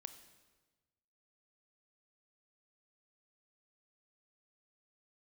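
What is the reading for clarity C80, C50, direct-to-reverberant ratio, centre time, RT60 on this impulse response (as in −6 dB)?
12.5 dB, 11.0 dB, 10.0 dB, 12 ms, 1.3 s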